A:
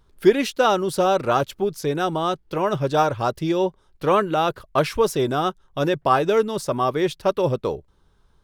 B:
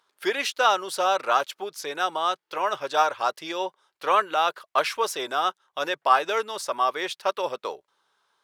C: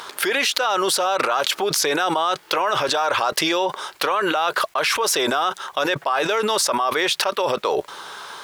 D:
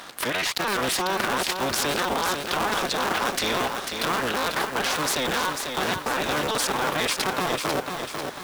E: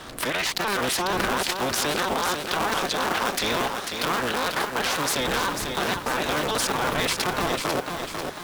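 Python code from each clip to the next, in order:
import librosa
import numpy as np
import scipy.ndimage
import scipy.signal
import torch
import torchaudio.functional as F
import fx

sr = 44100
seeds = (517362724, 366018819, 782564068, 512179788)

y1 = scipy.signal.sosfilt(scipy.signal.butter(2, 860.0, 'highpass', fs=sr, output='sos'), x)
y1 = fx.high_shelf(y1, sr, hz=10000.0, db=-7.0)
y1 = F.gain(torch.from_numpy(y1), 2.0).numpy()
y2 = fx.env_flatten(y1, sr, amount_pct=100)
y2 = F.gain(torch.from_numpy(y2), -5.5).numpy()
y3 = fx.cycle_switch(y2, sr, every=3, mode='inverted')
y3 = fx.echo_crushed(y3, sr, ms=495, feedback_pct=55, bits=6, wet_db=-5.0)
y3 = F.gain(torch.from_numpy(y3), -5.5).numpy()
y4 = fx.dmg_wind(y3, sr, seeds[0], corner_hz=440.0, level_db=-41.0)
y4 = fx.vibrato_shape(y4, sr, shape='saw_up', rate_hz=6.2, depth_cents=100.0)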